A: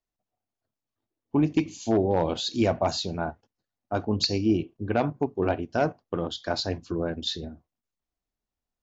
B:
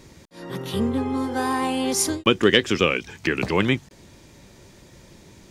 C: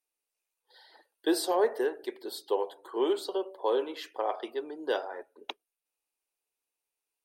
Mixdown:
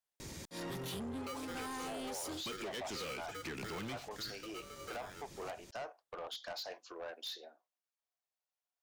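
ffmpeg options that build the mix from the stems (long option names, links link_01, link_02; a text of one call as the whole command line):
ffmpeg -i stem1.wav -i stem2.wav -i stem3.wav -filter_complex "[0:a]highpass=frequency=560:width=0.5412,highpass=frequency=560:width=1.3066,volume=-4.5dB[link_01];[1:a]aemphasis=mode=production:type=cd,volume=17dB,asoftclip=hard,volume=-17dB,adelay=200,volume=1dB[link_02];[2:a]acrossover=split=210[link_03][link_04];[link_04]acompressor=threshold=-45dB:ratio=2[link_05];[link_03][link_05]amix=inputs=2:normalize=0,aeval=exprs='val(0)*sgn(sin(2*PI*870*n/s))':channel_layout=same,volume=-6.5dB,asplit=2[link_06][link_07];[link_07]apad=whole_len=251701[link_08];[link_02][link_08]sidechaincompress=threshold=-53dB:ratio=5:attack=5.4:release=844[link_09];[link_01][link_09]amix=inputs=2:normalize=0,acompressor=threshold=-33dB:ratio=12,volume=0dB[link_10];[link_06][link_10]amix=inputs=2:normalize=0,asoftclip=type=tanh:threshold=-38.5dB,equalizer=frequency=12000:width_type=o:width=0.43:gain=-2.5" out.wav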